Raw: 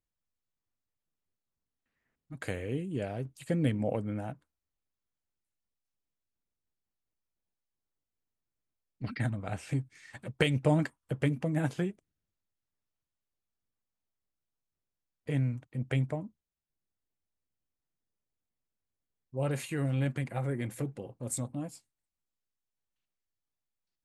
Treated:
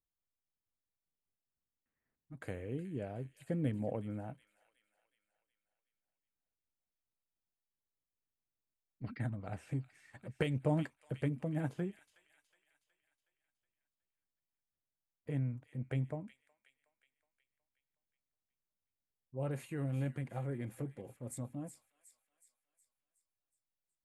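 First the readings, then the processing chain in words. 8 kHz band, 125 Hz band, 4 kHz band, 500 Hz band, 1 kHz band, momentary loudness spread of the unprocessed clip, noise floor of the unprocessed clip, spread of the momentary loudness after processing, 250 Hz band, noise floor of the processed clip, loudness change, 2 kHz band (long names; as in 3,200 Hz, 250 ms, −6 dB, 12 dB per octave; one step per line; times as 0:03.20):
below −10 dB, −6.0 dB, −12.5 dB, −6.5 dB, −7.0 dB, 13 LU, below −85 dBFS, 13 LU, −6.0 dB, below −85 dBFS, −6.5 dB, −10.0 dB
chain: parametric band 5,100 Hz −9 dB 2.5 octaves
delay with a high-pass on its return 368 ms, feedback 51%, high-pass 2,500 Hz, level −9 dB
level −6 dB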